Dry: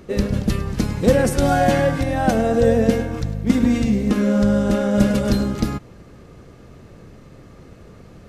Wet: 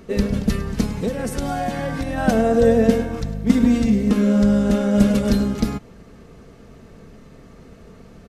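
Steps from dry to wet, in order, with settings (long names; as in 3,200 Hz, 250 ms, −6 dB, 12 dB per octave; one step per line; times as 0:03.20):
comb filter 4.5 ms, depth 39%
0:00.85–0:02.18: downward compressor 10 to 1, threshold −19 dBFS, peak gain reduction 12 dB
level −1 dB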